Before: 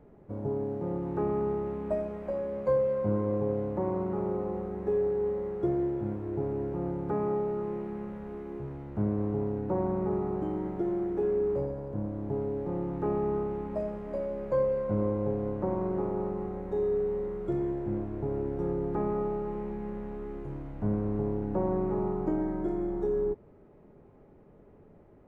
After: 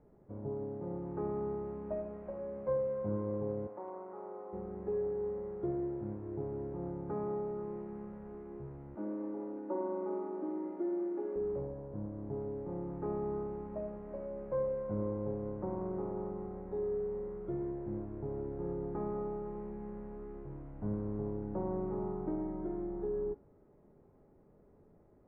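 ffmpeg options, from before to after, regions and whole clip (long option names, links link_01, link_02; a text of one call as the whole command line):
ffmpeg -i in.wav -filter_complex "[0:a]asettb=1/sr,asplit=3[link_01][link_02][link_03];[link_01]atrim=end=3.674[link_04];[link_02]atrim=start=3.67:end=4.53,asetpts=PTS-STARTPTS,afade=type=in:duration=0.004:curve=qsin,afade=type=out:start_time=0.856:duration=0.004:curve=qsin,highpass=580,lowpass=2200,asoftclip=type=hard:threshold=-26.5dB[link_05];[link_03]atrim=start=4.526[link_06];[link_04][link_05]acrossfade=duration=0.004:curve1=hsin:curve2=qsin[link_07];[link_07][link_06]acrossfade=duration=0.004:curve1=qsin:curve2=hsin,asettb=1/sr,asplit=3[link_08][link_09][link_10];[link_08]atrim=end=8.954[link_11];[link_09]atrim=start=8.95:end=11.36,asetpts=PTS-STARTPTS,afade=type=in:duration=0.004:curve=qsin,afade=type=out:start_time=2.406:duration=0.004:curve=qsin,highpass=frequency=250:width=0.5412,highpass=frequency=250:width=1.3066,aecho=1:1:3.4:0.71,atrim=end_sample=106281[link_12];[link_10]atrim=start=11.356[link_13];[link_11][link_12]acrossfade=duration=0.004:curve1=hsin:curve2=qsin[link_14];[link_14][link_13]acrossfade=duration=0.004:curve1=qsin:curve2=hsin,lowpass=1700,bandreject=frequency=56:width_type=h:width=4,bandreject=frequency=112:width_type=h:width=4,bandreject=frequency=168:width_type=h:width=4,bandreject=frequency=224:width_type=h:width=4,bandreject=frequency=280:width_type=h:width=4,bandreject=frequency=336:width_type=h:width=4,bandreject=frequency=392:width_type=h:width=4,bandreject=frequency=448:width_type=h:width=4,bandreject=frequency=504:width_type=h:width=4,bandreject=frequency=560:width_type=h:width=4,bandreject=frequency=616:width_type=h:width=4,bandreject=frequency=672:width_type=h:width=4,bandreject=frequency=728:width_type=h:width=4,bandreject=frequency=784:width_type=h:width=4,bandreject=frequency=840:width_type=h:width=4,bandreject=frequency=896:width_type=h:width=4,bandreject=frequency=952:width_type=h:width=4,bandreject=frequency=1008:width_type=h:width=4,bandreject=frequency=1064:width_type=h:width=4,bandreject=frequency=1120:width_type=h:width=4,bandreject=frequency=1176:width_type=h:width=4,bandreject=frequency=1232:width_type=h:width=4,bandreject=frequency=1288:width_type=h:width=4,bandreject=frequency=1344:width_type=h:width=4,bandreject=frequency=1400:width_type=h:width=4,bandreject=frequency=1456:width_type=h:width=4,bandreject=frequency=1512:width_type=h:width=4,bandreject=frequency=1568:width_type=h:width=4,bandreject=frequency=1624:width_type=h:width=4,bandreject=frequency=1680:width_type=h:width=4,bandreject=frequency=1736:width_type=h:width=4,volume=-7dB" out.wav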